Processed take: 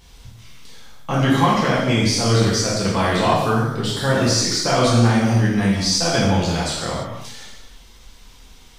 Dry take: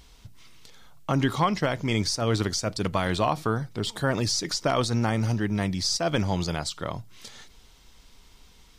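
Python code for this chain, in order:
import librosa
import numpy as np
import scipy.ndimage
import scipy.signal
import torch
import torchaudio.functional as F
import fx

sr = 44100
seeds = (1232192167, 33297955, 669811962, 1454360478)

y = fx.rev_gated(x, sr, seeds[0], gate_ms=370, shape='falling', drr_db=-7.5)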